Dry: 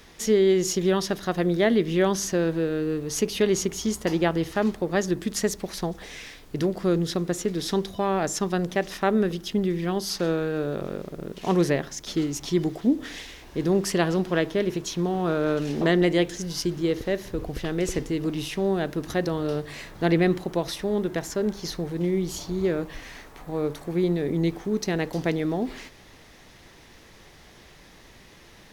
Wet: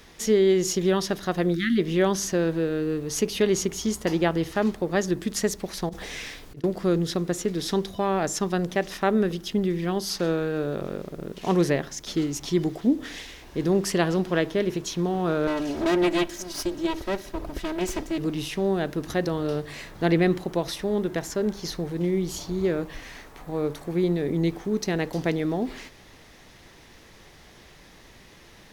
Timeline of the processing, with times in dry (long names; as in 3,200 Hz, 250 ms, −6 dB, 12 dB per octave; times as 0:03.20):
0:01.55–0:01.78: time-frequency box erased 360–1,200 Hz
0:05.89–0:06.64: compressor whose output falls as the input rises −35 dBFS, ratio −0.5
0:15.47–0:18.18: lower of the sound and its delayed copy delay 3.1 ms